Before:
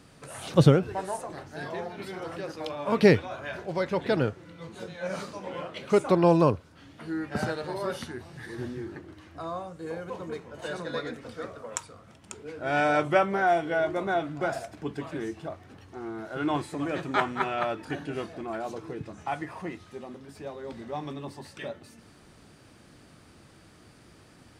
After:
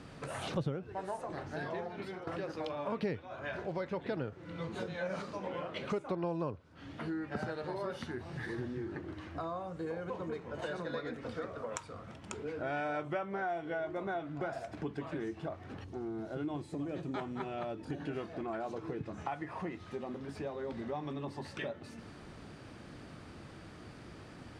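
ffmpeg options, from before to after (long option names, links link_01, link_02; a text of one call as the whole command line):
ffmpeg -i in.wav -filter_complex "[0:a]asettb=1/sr,asplit=3[link_01][link_02][link_03];[link_01]atrim=end=15.844[link_04];[link_02]atrim=start=15.84:end=18,asetpts=PTS-STARTPTS,afade=type=in:duration=0.004:curve=qsin,afade=type=out:start_time=2.156:duration=0.004:curve=qsin,equalizer=frequency=1500:width=0.56:gain=-12[link_05];[link_03]atrim=start=17.996[link_06];[link_04][link_05]acrossfade=duration=0.004:curve1=hsin:curve2=qsin[link_07];[link_07][link_06]acrossfade=duration=0.004:curve1=qsin:curve2=hsin,asplit=4[link_08][link_09][link_10][link_11];[link_08]atrim=end=2.27,asetpts=PTS-STARTPTS,afade=type=out:start_time=1.79:duration=0.48:silence=0.133352[link_12];[link_09]atrim=start=2.27:end=4.322,asetpts=PTS-STARTPTS,afade=type=in:duration=0.004:curve=hsin:silence=0.133352[link_13];[link_10]atrim=start=4.318:end=5.222,asetpts=PTS-STARTPTS,volume=3.5dB[link_14];[link_11]atrim=start=5.218[link_15];[link_12][link_13]concat=n=2:v=0:a=1[link_16];[link_16][link_14]acrossfade=duration=0.004:curve1=hsin:curve2=hsin[link_17];[link_17][link_15]acrossfade=duration=0.004:curve1=hsin:curve2=hsin,aemphasis=mode=reproduction:type=50fm,acompressor=threshold=-41dB:ratio=4,volume=4dB" out.wav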